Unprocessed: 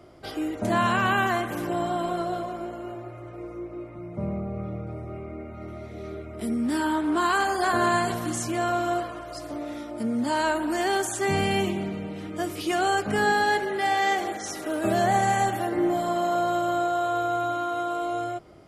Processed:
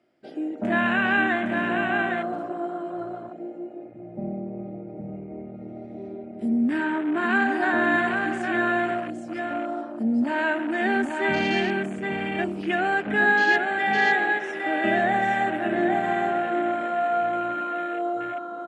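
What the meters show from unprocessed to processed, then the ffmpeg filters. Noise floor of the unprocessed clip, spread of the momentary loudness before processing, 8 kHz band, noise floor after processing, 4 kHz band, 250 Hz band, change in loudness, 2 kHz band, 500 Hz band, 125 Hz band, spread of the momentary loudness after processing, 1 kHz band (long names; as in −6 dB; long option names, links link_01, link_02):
−40 dBFS, 15 LU, below −15 dB, −40 dBFS, −2.0 dB, +2.5 dB, +2.0 dB, +6.5 dB, 0.0 dB, −5.0 dB, 16 LU, −0.5 dB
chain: -af "highpass=210,equalizer=frequency=230:width_type=q:width=4:gain=7,equalizer=frequency=460:width_type=q:width=4:gain=-3,equalizer=frequency=1100:width_type=q:width=4:gain=-9,equalizer=frequency=1700:width_type=q:width=4:gain=8,equalizer=frequency=2600:width_type=q:width=4:gain=6,equalizer=frequency=6300:width_type=q:width=4:gain=-5,lowpass=frequency=8900:width=0.5412,lowpass=frequency=8900:width=1.3066,aecho=1:1:811:0.596,afwtdn=0.0251"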